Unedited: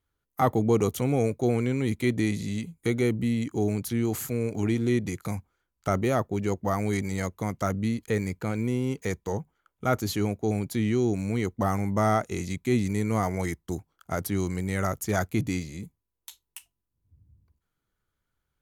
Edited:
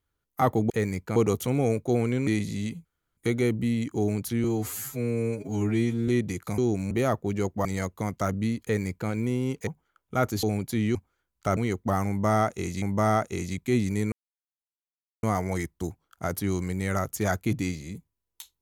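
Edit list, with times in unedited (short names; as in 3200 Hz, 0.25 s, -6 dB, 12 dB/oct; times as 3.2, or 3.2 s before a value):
1.81–2.19 cut
2.77 insert room tone 0.32 s
4.04–4.86 stretch 2×
5.36–5.98 swap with 10.97–11.3
6.72–7.06 cut
8.04–8.5 copy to 0.7
9.08–9.37 cut
10.13–10.45 cut
11.81–12.55 loop, 2 plays
13.11 insert silence 1.11 s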